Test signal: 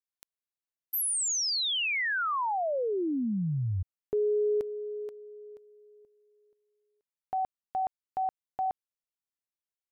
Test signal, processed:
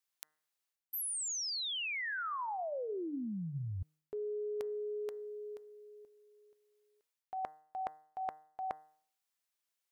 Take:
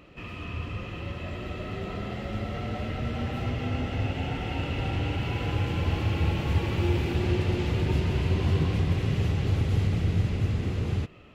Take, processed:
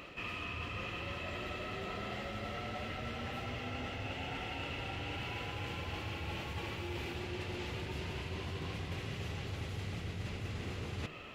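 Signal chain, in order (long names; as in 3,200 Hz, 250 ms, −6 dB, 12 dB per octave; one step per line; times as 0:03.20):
low-shelf EQ 440 Hz −11.5 dB
reversed playback
downward compressor 12 to 1, threshold −45 dBFS
reversed playback
hum removal 153.7 Hz, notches 13
level +8 dB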